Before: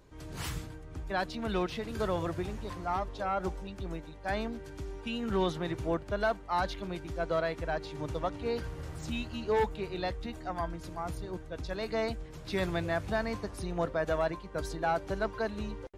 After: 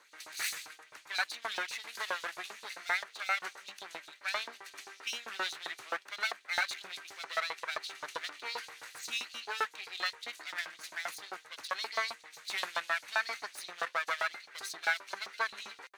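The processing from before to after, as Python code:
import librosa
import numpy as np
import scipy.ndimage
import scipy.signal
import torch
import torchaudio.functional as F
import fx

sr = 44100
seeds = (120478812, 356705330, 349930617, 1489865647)

p1 = fx.lower_of_two(x, sr, delay_ms=0.48)
p2 = fx.rider(p1, sr, range_db=5, speed_s=0.5)
p3 = p1 + F.gain(torch.from_numpy(p2), 2.5).numpy()
p4 = fx.filter_lfo_highpass(p3, sr, shape='saw_up', hz=7.6, low_hz=840.0, high_hz=5100.0, q=1.5)
y = F.gain(torch.from_numpy(p4), -3.5).numpy()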